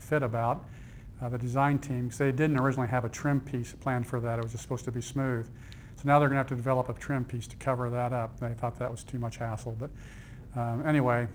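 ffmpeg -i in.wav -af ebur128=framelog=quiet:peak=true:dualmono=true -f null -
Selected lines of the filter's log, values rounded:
Integrated loudness:
  I:         -27.6 LUFS
  Threshold: -38.0 LUFS
Loudness range:
  LRA:         4.7 LU
  Threshold: -48.0 LUFS
  LRA low:   -31.4 LUFS
  LRA high:  -26.7 LUFS
True peak:
  Peak:      -10.5 dBFS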